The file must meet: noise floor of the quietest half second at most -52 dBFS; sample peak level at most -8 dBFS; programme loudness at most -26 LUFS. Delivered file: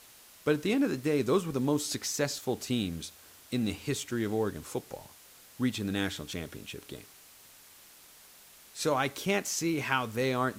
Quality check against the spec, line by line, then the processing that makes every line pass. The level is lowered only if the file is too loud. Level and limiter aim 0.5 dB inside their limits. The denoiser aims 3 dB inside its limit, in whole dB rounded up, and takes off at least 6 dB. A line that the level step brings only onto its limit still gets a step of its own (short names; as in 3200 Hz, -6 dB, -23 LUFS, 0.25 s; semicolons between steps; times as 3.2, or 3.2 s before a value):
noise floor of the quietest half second -55 dBFS: OK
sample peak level -12.0 dBFS: OK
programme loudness -31.5 LUFS: OK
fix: none